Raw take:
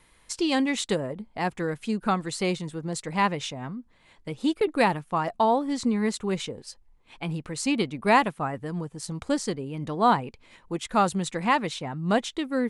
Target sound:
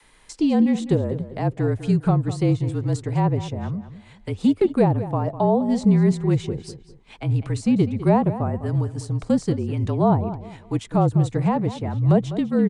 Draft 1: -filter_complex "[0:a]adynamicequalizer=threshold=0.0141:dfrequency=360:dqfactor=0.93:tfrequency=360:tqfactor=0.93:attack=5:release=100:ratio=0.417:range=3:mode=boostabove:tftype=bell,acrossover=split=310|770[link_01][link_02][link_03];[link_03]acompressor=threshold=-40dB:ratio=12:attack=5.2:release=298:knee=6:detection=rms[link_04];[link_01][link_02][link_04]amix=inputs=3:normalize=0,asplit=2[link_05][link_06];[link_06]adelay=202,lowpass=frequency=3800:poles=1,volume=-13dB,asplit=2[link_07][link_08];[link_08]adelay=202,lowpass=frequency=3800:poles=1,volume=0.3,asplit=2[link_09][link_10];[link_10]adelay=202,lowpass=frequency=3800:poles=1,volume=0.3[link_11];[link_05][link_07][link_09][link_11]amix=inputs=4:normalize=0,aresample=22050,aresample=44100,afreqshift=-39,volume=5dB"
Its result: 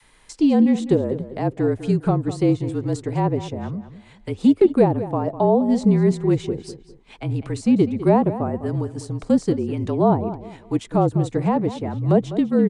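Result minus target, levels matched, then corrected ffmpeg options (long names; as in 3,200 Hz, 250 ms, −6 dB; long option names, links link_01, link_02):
125 Hz band −4.0 dB
-filter_complex "[0:a]adynamicequalizer=threshold=0.0141:dfrequency=150:dqfactor=0.93:tfrequency=150:tqfactor=0.93:attack=5:release=100:ratio=0.417:range=3:mode=boostabove:tftype=bell,acrossover=split=310|770[link_01][link_02][link_03];[link_03]acompressor=threshold=-40dB:ratio=12:attack=5.2:release=298:knee=6:detection=rms[link_04];[link_01][link_02][link_04]amix=inputs=3:normalize=0,asplit=2[link_05][link_06];[link_06]adelay=202,lowpass=frequency=3800:poles=1,volume=-13dB,asplit=2[link_07][link_08];[link_08]adelay=202,lowpass=frequency=3800:poles=1,volume=0.3,asplit=2[link_09][link_10];[link_10]adelay=202,lowpass=frequency=3800:poles=1,volume=0.3[link_11];[link_05][link_07][link_09][link_11]amix=inputs=4:normalize=0,aresample=22050,aresample=44100,afreqshift=-39,volume=5dB"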